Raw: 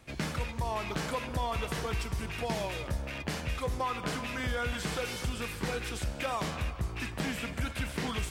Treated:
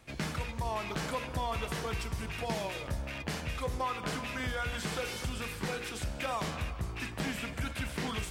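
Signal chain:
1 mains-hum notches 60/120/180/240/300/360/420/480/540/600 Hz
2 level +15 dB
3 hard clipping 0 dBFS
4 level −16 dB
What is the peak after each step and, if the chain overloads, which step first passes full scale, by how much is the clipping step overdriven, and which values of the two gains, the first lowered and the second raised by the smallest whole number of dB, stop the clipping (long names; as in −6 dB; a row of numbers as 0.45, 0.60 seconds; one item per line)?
−20.0, −5.0, −5.0, −21.0 dBFS
no step passes full scale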